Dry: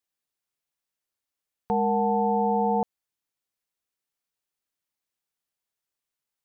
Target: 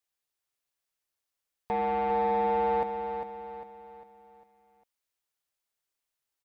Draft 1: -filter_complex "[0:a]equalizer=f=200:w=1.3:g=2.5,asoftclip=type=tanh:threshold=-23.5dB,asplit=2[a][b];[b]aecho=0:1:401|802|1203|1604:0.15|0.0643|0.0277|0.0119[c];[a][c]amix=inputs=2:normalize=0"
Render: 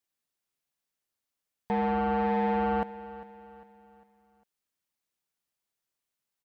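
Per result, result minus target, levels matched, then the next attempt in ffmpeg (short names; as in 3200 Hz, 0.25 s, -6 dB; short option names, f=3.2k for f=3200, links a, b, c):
250 Hz band +7.5 dB; echo-to-direct -9 dB
-filter_complex "[0:a]equalizer=f=200:w=1.3:g=-7.5,asoftclip=type=tanh:threshold=-23.5dB,asplit=2[a][b];[b]aecho=0:1:401|802|1203|1604:0.15|0.0643|0.0277|0.0119[c];[a][c]amix=inputs=2:normalize=0"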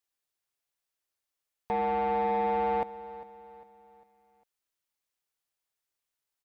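echo-to-direct -9 dB
-filter_complex "[0:a]equalizer=f=200:w=1.3:g=-7.5,asoftclip=type=tanh:threshold=-23.5dB,asplit=2[a][b];[b]aecho=0:1:401|802|1203|1604|2005:0.422|0.181|0.078|0.0335|0.0144[c];[a][c]amix=inputs=2:normalize=0"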